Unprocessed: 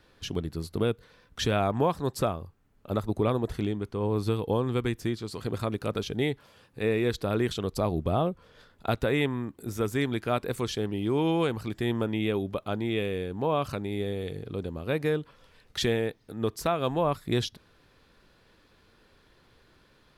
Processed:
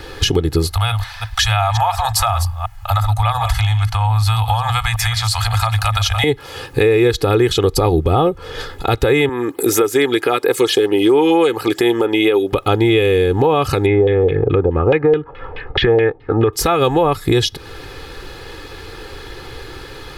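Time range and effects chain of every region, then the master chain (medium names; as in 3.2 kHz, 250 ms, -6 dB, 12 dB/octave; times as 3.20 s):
0.71–6.24 s: chunks repeated in reverse 177 ms, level -13 dB + Chebyshev band-stop 110–640 Hz, order 5 + compression 2.5:1, threshold -42 dBFS
9.29–12.53 s: high-pass 300 Hz + LFO notch sine 4.4 Hz 710–6800 Hz
13.86–16.53 s: LFO low-pass saw down 4.7 Hz 590–2900 Hz + distance through air 170 m
whole clip: comb 2.4 ms, depth 73%; compression 6:1, threshold -37 dBFS; loudness maximiser +29.5 dB; trim -3.5 dB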